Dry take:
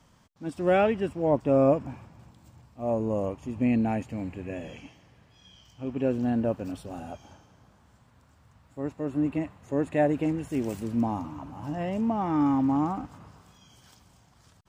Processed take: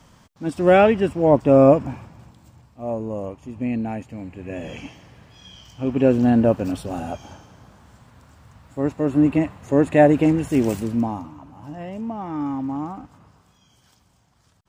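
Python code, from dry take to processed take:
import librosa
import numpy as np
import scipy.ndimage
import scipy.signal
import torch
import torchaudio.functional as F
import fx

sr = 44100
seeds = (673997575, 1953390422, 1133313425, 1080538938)

y = fx.gain(x, sr, db=fx.line((1.87, 8.5), (3.09, -0.5), (4.3, -0.5), (4.81, 10.0), (10.7, 10.0), (11.38, -2.5)))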